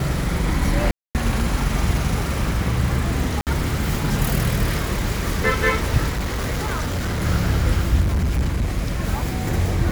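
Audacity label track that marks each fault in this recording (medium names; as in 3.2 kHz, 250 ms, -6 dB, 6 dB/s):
0.910000	1.150000	dropout 238 ms
3.410000	3.470000	dropout 58 ms
6.090000	7.230000	clipped -20 dBFS
8.000000	8.790000	clipped -16.5 dBFS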